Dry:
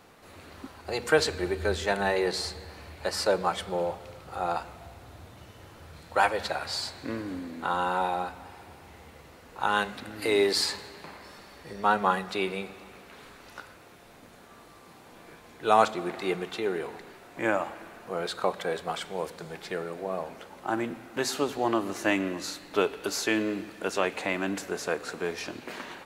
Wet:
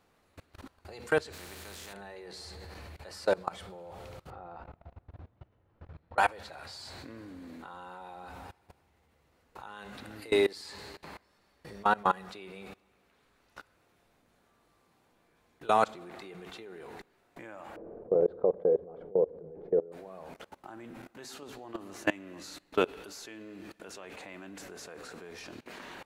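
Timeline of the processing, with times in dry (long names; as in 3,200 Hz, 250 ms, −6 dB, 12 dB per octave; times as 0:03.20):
0:01.32–0:01.92: compressing power law on the bin magnitudes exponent 0.41
0:04.30–0:06.18: head-to-tape spacing loss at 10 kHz 40 dB
0:17.76–0:19.92: low-pass with resonance 470 Hz, resonance Q 4.3
whole clip: low-shelf EQ 82 Hz +6 dB; output level in coarse steps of 23 dB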